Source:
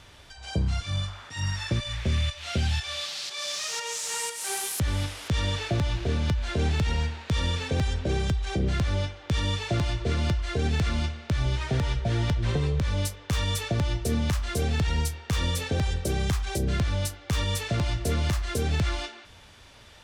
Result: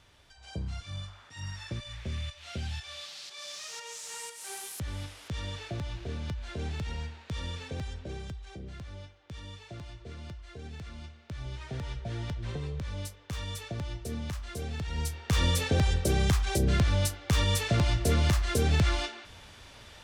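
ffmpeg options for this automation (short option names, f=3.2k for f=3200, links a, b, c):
-af "volume=8.5dB,afade=t=out:st=7.62:d=1.02:silence=0.421697,afade=t=in:st=10.97:d=0.98:silence=0.421697,afade=t=in:st=14.89:d=0.5:silence=0.281838"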